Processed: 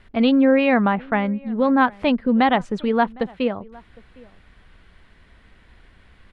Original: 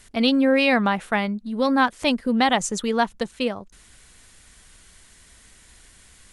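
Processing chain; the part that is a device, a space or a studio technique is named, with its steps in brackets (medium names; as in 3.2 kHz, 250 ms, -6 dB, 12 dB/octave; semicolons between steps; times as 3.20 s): shout across a valley (distance through air 420 m; echo from a far wall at 130 m, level -24 dB); 0.51–1.81 s: distance through air 130 m; trim +4 dB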